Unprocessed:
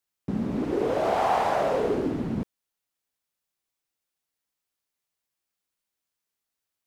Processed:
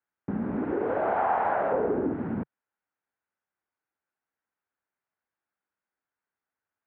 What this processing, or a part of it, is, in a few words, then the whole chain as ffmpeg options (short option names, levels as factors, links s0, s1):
bass amplifier: -filter_complex "[0:a]asettb=1/sr,asplit=3[s0][s1][s2];[s0]atrim=end=1.724[s3];[s1]atrim=start=1.72:end=2.14,asetpts=PTS-STARTPTS,afade=t=in:d=0.004:c=qsin,afade=t=out:st=0.416:d=0.004:c=qsin,tiltshelf=f=1400:g=5.5[s4];[s2]atrim=start=2.136[s5];[s3][s4]acrossfade=d=0.004:c1=hsin:c2=qsin[s6];[s6][s5]acrossfade=d=0.004:c1=qsin:c2=hsin,acompressor=threshold=0.0562:ratio=3,highpass=75,equalizer=f=140:t=q:w=4:g=-6,equalizer=f=850:t=q:w=4:g=4,equalizer=f=1500:t=q:w=4:g=7,lowpass=f=2100:w=0.5412,lowpass=f=2100:w=1.3066"